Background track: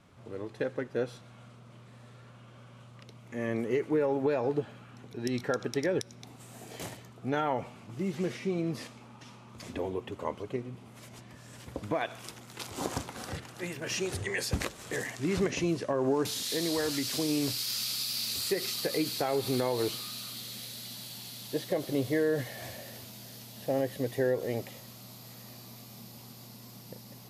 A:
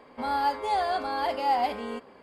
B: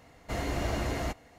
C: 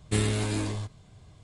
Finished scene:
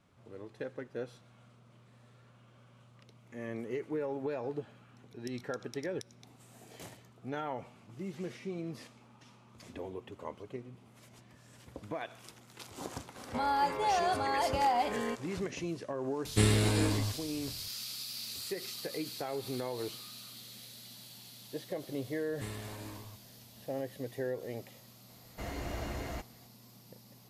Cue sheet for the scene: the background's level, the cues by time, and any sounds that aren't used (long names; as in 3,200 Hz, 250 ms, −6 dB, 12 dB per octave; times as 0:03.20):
background track −8 dB
0:13.16: mix in A + downward compressor 1.5 to 1, threshold −31 dBFS
0:16.25: mix in C + notch filter 6,300 Hz, Q 7.6
0:22.29: mix in C −17 dB + parametric band 1,000 Hz +8 dB 0.65 octaves
0:25.09: mix in B −7.5 dB